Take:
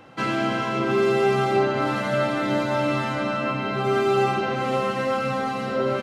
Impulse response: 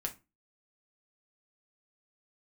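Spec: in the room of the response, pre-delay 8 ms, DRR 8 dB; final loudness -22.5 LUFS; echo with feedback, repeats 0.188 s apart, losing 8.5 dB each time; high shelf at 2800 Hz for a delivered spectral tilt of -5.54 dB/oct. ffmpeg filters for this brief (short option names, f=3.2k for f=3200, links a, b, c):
-filter_complex "[0:a]highshelf=f=2.8k:g=-7.5,aecho=1:1:188|376|564|752:0.376|0.143|0.0543|0.0206,asplit=2[a][b];[1:a]atrim=start_sample=2205,adelay=8[c];[b][c]afir=irnorm=-1:irlink=0,volume=-9dB[d];[a][d]amix=inputs=2:normalize=0,volume=0.5dB"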